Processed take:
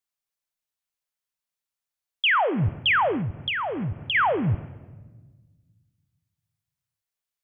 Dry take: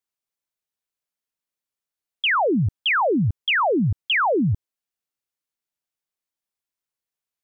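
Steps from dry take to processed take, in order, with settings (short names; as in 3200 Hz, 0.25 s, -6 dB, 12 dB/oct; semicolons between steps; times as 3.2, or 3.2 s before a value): bell 300 Hz -7.5 dB 1.5 oct; shoebox room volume 1000 m³, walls mixed, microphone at 0.32 m; 3.17–4.15 compressor, threshold -26 dBFS, peak gain reduction 7.5 dB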